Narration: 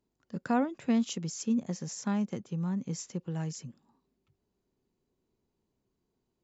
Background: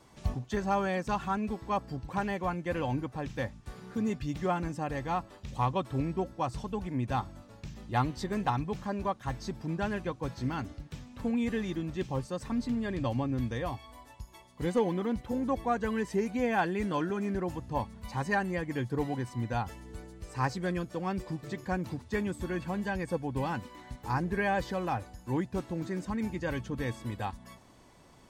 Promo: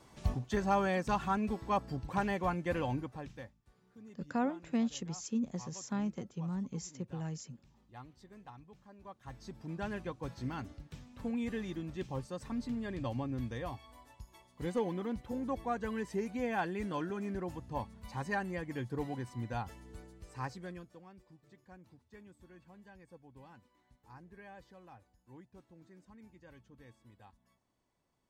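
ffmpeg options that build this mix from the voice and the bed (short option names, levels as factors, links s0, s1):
-filter_complex "[0:a]adelay=3850,volume=0.562[s0];[1:a]volume=5.96,afade=t=out:st=2.67:d=0.88:silence=0.0841395,afade=t=in:st=8.99:d=0.93:silence=0.149624,afade=t=out:st=19.99:d=1.1:silence=0.133352[s1];[s0][s1]amix=inputs=2:normalize=0"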